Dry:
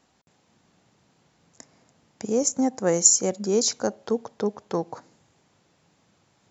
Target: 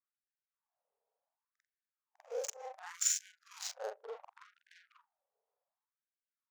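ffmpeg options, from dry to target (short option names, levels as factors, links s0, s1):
-af "afftfilt=real='re':imag='-im':win_size=4096:overlap=0.75,adynamicsmooth=sensitivity=6:basefreq=540,afftfilt=real='re*gte(b*sr/1024,390*pow(1500/390,0.5+0.5*sin(2*PI*0.68*pts/sr)))':imag='im*gte(b*sr/1024,390*pow(1500/390,0.5+0.5*sin(2*PI*0.68*pts/sr)))':win_size=1024:overlap=0.75,volume=0.398"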